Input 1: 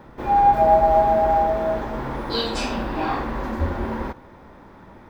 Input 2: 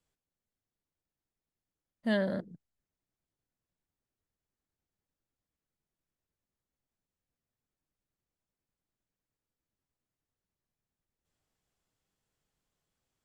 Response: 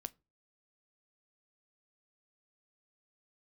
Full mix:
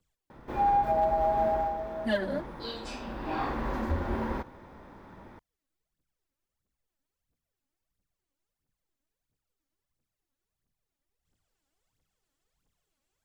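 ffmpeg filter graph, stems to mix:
-filter_complex "[0:a]asoftclip=type=hard:threshold=-6.5dB,adelay=300,volume=3.5dB,afade=type=out:start_time=1.49:duration=0.22:silence=0.398107,afade=type=in:start_time=3.03:duration=0.64:silence=0.334965[link_01];[1:a]aphaser=in_gain=1:out_gain=1:delay=3.8:decay=0.72:speed=1.5:type=triangular,volume=-0.5dB[link_02];[link_01][link_02]amix=inputs=2:normalize=0,alimiter=limit=-18dB:level=0:latency=1:release=215"

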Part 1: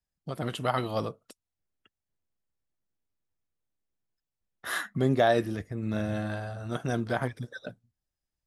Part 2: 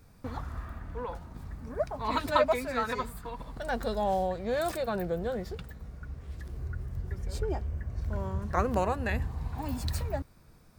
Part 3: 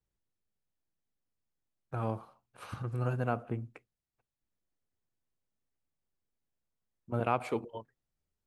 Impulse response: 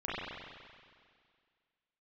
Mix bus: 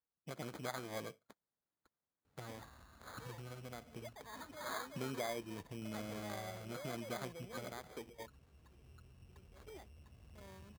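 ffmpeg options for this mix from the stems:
-filter_complex "[0:a]acompressor=threshold=-31dB:ratio=3,volume=-8.5dB[link_01];[1:a]asoftclip=type=tanh:threshold=-28.5dB,adelay=2250,volume=-16dB[link_02];[2:a]acompressor=threshold=-40dB:ratio=12,adelay=450,volume=-3dB[link_03];[link_01][link_02][link_03]amix=inputs=3:normalize=0,lowpass=8900,acrusher=samples=16:mix=1:aa=0.000001,highpass=frequency=160:poles=1"

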